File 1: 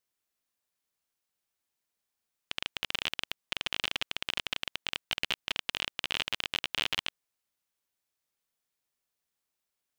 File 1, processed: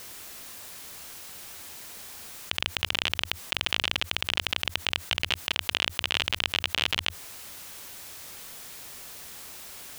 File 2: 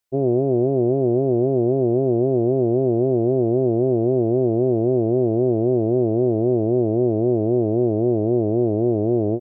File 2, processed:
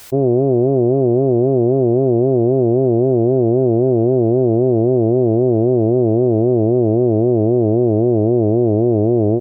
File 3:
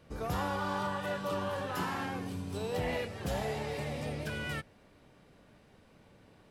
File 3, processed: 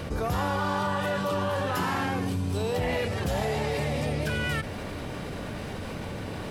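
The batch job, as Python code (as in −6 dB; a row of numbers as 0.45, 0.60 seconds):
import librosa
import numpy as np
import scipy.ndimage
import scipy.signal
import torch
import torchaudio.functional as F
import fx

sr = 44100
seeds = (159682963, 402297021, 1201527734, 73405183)

y = fx.peak_eq(x, sr, hz=86.0, db=5.0, octaves=0.52)
y = fx.env_flatten(y, sr, amount_pct=70)
y = F.gain(torch.from_numpy(y), 3.5).numpy()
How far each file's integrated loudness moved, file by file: +3.5, +4.5, +6.5 LU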